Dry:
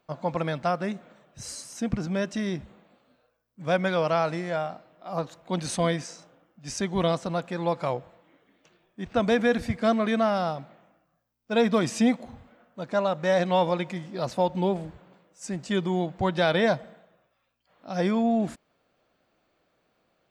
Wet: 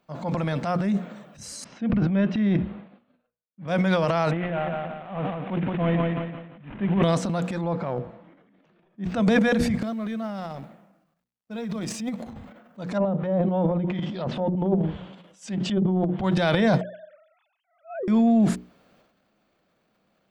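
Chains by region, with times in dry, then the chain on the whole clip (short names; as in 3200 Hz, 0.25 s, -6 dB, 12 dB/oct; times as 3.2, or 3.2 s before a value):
1.64–3.68 LPF 3300 Hz 24 dB/oct + expander -56 dBFS
4.31–7.03 CVSD 16 kbps + feedback echo 0.172 s, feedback 31%, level -5 dB
7.61–9.04 block floating point 7-bit + tape spacing loss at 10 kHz 29 dB
9.78–12.31 G.711 law mismatch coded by A + compressor 10:1, threshold -32 dBFS + mismatched tape noise reduction decoder only
12.97–16.24 bell 3200 Hz +12 dB 0.43 oct + notches 50/100/150/200/250/300/350/400 Hz + treble ducked by the level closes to 620 Hz, closed at -22.5 dBFS
16.81–18.08 sine-wave speech + treble ducked by the level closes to 330 Hz, closed at -23.5 dBFS
whole clip: bell 200 Hz +9.5 dB 0.58 oct; notches 60/120/180/240/300/360/420/480 Hz; transient shaper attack -6 dB, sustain +10 dB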